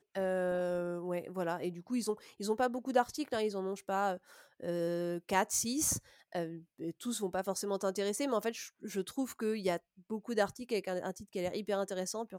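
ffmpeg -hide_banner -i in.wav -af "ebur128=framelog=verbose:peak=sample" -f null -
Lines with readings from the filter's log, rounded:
Integrated loudness:
  I:         -35.7 LUFS
  Threshold: -45.7 LUFS
Loudness range:
  LRA:         2.4 LU
  Threshold: -55.6 LUFS
  LRA low:   -36.9 LUFS
  LRA high:  -34.6 LUFS
Sample peak:
  Peak:      -15.9 dBFS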